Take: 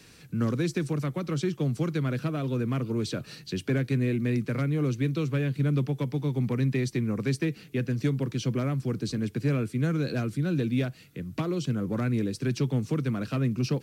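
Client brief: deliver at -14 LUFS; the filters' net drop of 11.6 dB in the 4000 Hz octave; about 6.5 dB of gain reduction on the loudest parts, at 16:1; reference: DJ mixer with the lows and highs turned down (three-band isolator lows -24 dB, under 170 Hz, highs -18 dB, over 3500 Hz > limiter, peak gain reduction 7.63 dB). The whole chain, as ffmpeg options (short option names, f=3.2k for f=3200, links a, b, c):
-filter_complex "[0:a]equalizer=f=4k:t=o:g=-7.5,acompressor=threshold=-28dB:ratio=16,acrossover=split=170 3500:gain=0.0631 1 0.126[a][b][c];[a][b][c]amix=inputs=3:normalize=0,volume=25dB,alimiter=limit=-4.5dB:level=0:latency=1"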